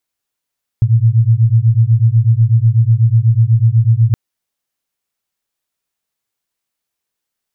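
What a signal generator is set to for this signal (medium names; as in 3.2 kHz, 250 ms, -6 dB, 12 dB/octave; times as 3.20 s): beating tones 110 Hz, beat 8.1 Hz, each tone -10.5 dBFS 3.32 s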